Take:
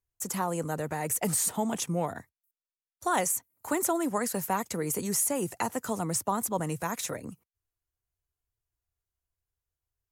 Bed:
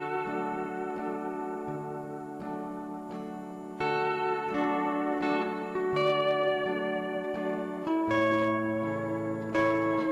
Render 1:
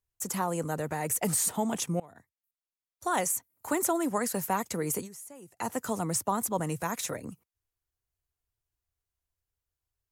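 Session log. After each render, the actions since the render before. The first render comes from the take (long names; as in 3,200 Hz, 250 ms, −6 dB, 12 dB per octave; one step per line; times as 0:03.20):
0:02.00–0:03.84: fade in equal-power, from −24 dB
0:04.97–0:05.68: duck −18.5 dB, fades 0.12 s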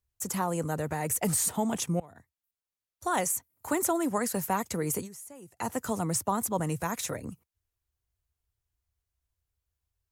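parametric band 66 Hz +8.5 dB 1.6 octaves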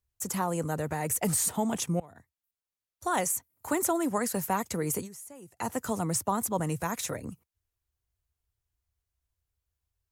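no processing that can be heard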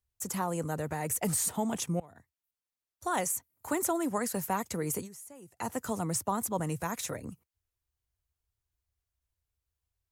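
level −2.5 dB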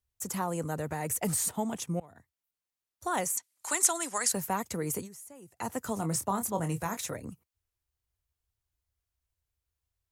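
0:01.51–0:02.01: expander for the loud parts, over −39 dBFS
0:03.37–0:04.32: meter weighting curve ITU-R 468
0:05.94–0:06.97: double-tracking delay 25 ms −8 dB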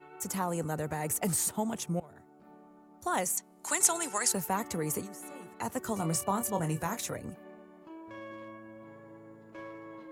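mix in bed −19 dB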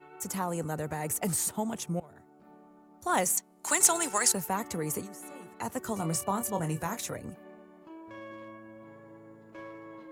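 0:03.09–0:04.32: leveller curve on the samples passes 1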